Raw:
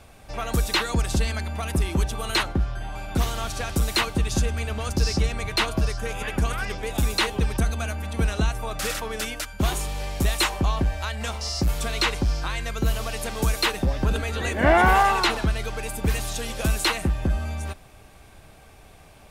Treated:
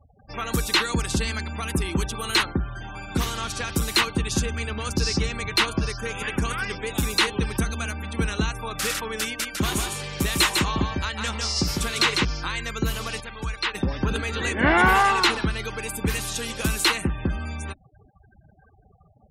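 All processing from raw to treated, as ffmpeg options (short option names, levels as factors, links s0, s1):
-filter_complex "[0:a]asettb=1/sr,asplit=3[s0][s1][s2];[s0]atrim=end=9.244[s3];[s1]atrim=start=9.24:end=12.25,asetpts=PTS-STARTPTS,afade=t=in:d=0.004:c=qsin,afade=t=out:st=3.006:d=0.004:c=qsin,highpass=50,aecho=1:1:151:0.631,atrim=end_sample=132741[s4];[s2]atrim=start=12.246[s5];[s3][s4]acrossfade=d=0.004:c1=hsin:c2=qsin[s6];[s6][s5]acrossfade=d=0.004:c1=qsin:c2=hsin,asettb=1/sr,asplit=3[s7][s8][s9];[s7]atrim=end=13.204[s10];[s8]atrim=start=13.2:end=13.75,asetpts=PTS-STARTPTS,afade=t=in:d=0.004:c=qsin,afade=t=out:st=0.546:d=0.004:c=qsin,lowpass=f=2100:p=1,equalizer=f=300:t=o:w=3:g=-11[s11];[s9]atrim=start=13.746[s12];[s10][s11]acrossfade=d=0.004:c1=hsin:c2=qsin[s13];[s13][s12]acrossfade=d=0.004:c1=qsin:c2=hsin,highpass=f=130:p=1,afftfilt=real='re*gte(hypot(re,im),0.00891)':imag='im*gte(hypot(re,im),0.00891)':win_size=1024:overlap=0.75,equalizer=f=650:t=o:w=0.57:g=-10.5,volume=1.41"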